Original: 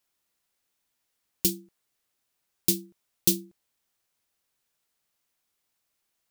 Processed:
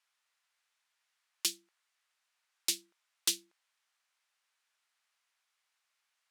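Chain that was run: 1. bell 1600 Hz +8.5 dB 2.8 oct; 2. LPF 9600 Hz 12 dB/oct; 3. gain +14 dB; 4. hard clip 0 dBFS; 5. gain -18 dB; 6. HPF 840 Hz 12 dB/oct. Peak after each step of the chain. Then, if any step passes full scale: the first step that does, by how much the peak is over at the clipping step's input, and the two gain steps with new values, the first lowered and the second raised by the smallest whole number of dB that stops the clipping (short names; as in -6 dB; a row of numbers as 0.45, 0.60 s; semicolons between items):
-2.5, -6.0, +8.0, 0.0, -18.0, -13.0 dBFS; step 3, 8.0 dB; step 3 +6 dB, step 5 -10 dB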